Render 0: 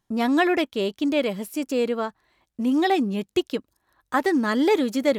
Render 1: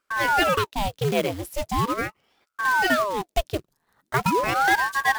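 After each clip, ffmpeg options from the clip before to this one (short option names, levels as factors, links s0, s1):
-af "acrusher=bits=3:mode=log:mix=0:aa=0.000001,aeval=exprs='val(0)*sin(2*PI*720*n/s+720*0.9/0.4*sin(2*PI*0.4*n/s))':c=same,volume=1.26"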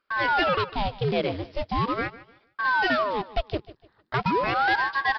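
-af "aecho=1:1:151|302|453:0.112|0.0348|0.0108,aresample=11025,asoftclip=type=tanh:threshold=0.168,aresample=44100"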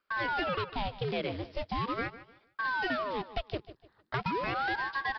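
-filter_complex "[0:a]acrossover=split=430|1400|3800[s0][s1][s2][s3];[s0]acompressor=threshold=0.0282:ratio=4[s4];[s1]acompressor=threshold=0.0224:ratio=4[s5];[s2]acompressor=threshold=0.0251:ratio=4[s6];[s3]acompressor=threshold=0.00398:ratio=4[s7];[s4][s5][s6][s7]amix=inputs=4:normalize=0,volume=0.668"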